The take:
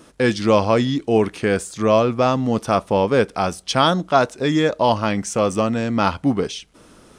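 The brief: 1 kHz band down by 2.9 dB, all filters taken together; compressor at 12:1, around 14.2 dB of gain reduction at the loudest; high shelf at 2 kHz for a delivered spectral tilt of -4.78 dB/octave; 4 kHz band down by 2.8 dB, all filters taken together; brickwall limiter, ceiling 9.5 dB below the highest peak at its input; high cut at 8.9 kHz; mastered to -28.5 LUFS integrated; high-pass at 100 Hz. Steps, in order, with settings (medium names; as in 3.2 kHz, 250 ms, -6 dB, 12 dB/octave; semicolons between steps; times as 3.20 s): high-pass 100 Hz; low-pass 8.9 kHz; peaking EQ 1 kHz -4.5 dB; treble shelf 2 kHz +3.5 dB; peaking EQ 4 kHz -7 dB; compression 12:1, threshold -26 dBFS; trim +5.5 dB; peak limiter -17.5 dBFS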